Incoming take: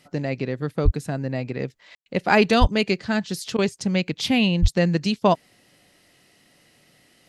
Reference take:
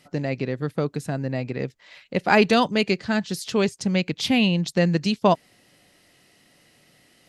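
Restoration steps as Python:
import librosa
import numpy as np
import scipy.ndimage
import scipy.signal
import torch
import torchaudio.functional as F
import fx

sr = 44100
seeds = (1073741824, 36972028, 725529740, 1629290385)

y = fx.highpass(x, sr, hz=140.0, slope=24, at=(0.84, 0.96), fade=0.02)
y = fx.highpass(y, sr, hz=140.0, slope=24, at=(2.6, 2.72), fade=0.02)
y = fx.highpass(y, sr, hz=140.0, slope=24, at=(4.61, 4.73), fade=0.02)
y = fx.fix_ambience(y, sr, seeds[0], print_start_s=5.9, print_end_s=6.4, start_s=1.95, end_s=2.06)
y = fx.fix_interpolate(y, sr, at_s=(3.57,), length_ms=13.0)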